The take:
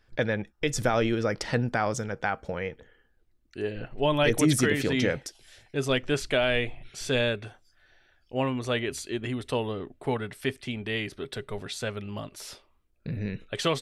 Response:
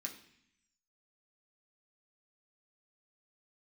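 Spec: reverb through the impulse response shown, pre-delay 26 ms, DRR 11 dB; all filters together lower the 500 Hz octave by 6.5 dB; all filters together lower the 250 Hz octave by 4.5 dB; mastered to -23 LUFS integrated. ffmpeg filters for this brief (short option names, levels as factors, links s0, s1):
-filter_complex "[0:a]equalizer=f=250:t=o:g=-3.5,equalizer=f=500:t=o:g=-7,asplit=2[s0][s1];[1:a]atrim=start_sample=2205,adelay=26[s2];[s1][s2]afir=irnorm=-1:irlink=0,volume=0.376[s3];[s0][s3]amix=inputs=2:normalize=0,volume=2.51"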